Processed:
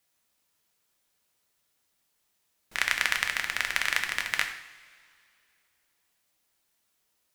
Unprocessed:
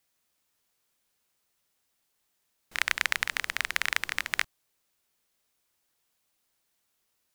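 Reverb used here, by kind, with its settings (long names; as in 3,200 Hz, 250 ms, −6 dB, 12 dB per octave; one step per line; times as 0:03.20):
coupled-rooms reverb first 0.64 s, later 2.5 s, from −17 dB, DRR 4 dB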